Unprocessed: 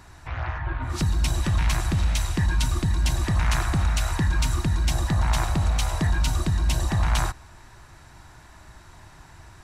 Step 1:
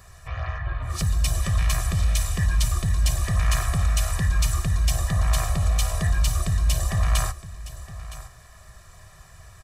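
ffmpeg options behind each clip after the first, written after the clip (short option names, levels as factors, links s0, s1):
-af "highshelf=f=7500:g=10.5,aecho=1:1:1.7:0.92,aecho=1:1:965:0.168,volume=0.596"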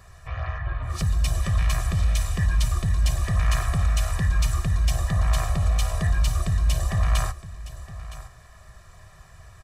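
-af "highshelf=f=4800:g=-7"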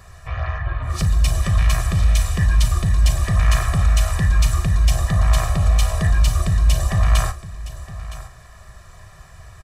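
-filter_complex "[0:a]asplit=2[s0][s1];[s1]adelay=39,volume=0.211[s2];[s0][s2]amix=inputs=2:normalize=0,volume=1.78"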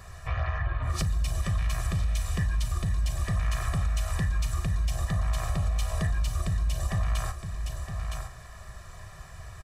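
-af "acompressor=threshold=0.0708:ratio=6,volume=0.841"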